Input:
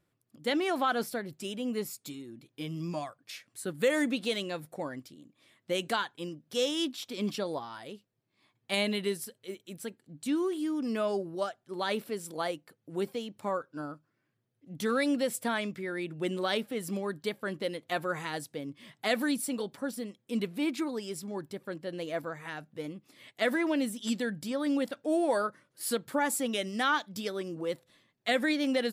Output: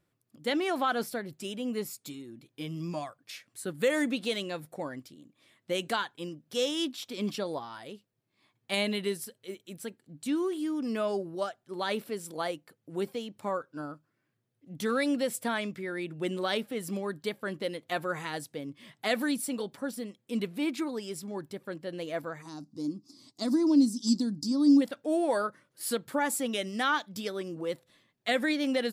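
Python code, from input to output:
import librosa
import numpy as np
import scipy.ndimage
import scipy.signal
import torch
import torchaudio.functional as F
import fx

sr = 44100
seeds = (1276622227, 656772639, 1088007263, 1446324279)

y = fx.curve_eq(x, sr, hz=(170.0, 290.0, 490.0, 1100.0, 1700.0, 3100.0, 4800.0, 13000.0), db=(0, 10, -11, -3, -22, -15, 13, -7), at=(22.41, 24.8), fade=0.02)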